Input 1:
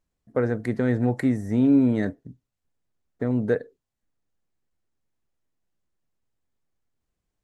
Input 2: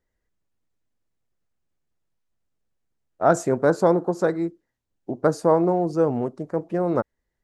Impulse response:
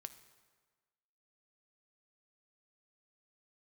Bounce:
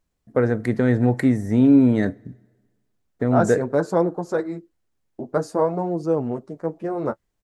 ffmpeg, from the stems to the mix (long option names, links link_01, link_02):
-filter_complex "[0:a]volume=2.5dB,asplit=2[link_01][link_02];[link_02]volume=-8dB[link_03];[1:a]agate=range=-33dB:threshold=-37dB:ratio=3:detection=peak,flanger=delay=6.1:depth=7.8:regen=-20:speed=0.51:shape=sinusoidal,adelay=100,volume=1dB[link_04];[2:a]atrim=start_sample=2205[link_05];[link_03][link_05]afir=irnorm=-1:irlink=0[link_06];[link_01][link_04][link_06]amix=inputs=3:normalize=0"